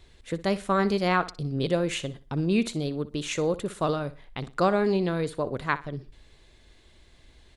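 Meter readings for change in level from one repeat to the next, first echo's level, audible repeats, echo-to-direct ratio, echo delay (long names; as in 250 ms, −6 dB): −10.5 dB, −16.5 dB, 2, −16.0 dB, 61 ms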